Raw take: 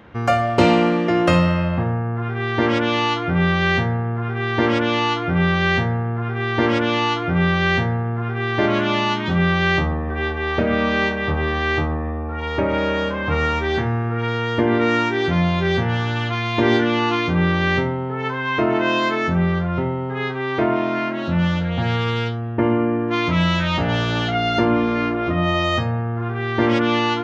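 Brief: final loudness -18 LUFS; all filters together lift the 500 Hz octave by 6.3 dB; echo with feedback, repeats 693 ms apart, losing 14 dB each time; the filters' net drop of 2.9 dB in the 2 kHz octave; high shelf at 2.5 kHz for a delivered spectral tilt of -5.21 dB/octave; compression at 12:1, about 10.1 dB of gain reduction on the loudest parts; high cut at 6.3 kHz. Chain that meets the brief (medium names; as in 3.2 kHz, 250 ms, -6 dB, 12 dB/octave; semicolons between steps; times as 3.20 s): low-pass 6.3 kHz; peaking EQ 500 Hz +8.5 dB; peaking EQ 2 kHz -6.5 dB; treble shelf 2.5 kHz +5 dB; compression 12:1, threshold -16 dBFS; feedback delay 693 ms, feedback 20%, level -14 dB; trim +3 dB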